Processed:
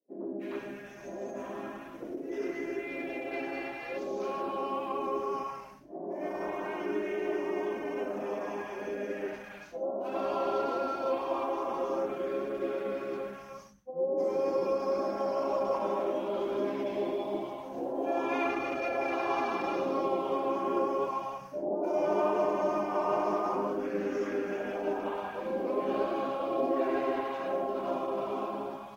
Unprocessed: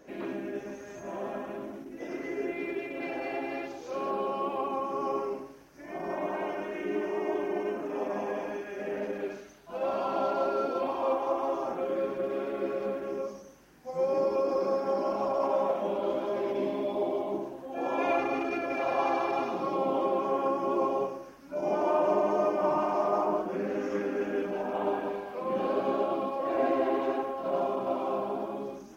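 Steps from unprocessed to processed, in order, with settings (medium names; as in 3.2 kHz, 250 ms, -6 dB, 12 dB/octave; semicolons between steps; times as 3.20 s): expander -38 dBFS; three bands offset in time mids, highs, lows 310/400 ms, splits 170/720 Hz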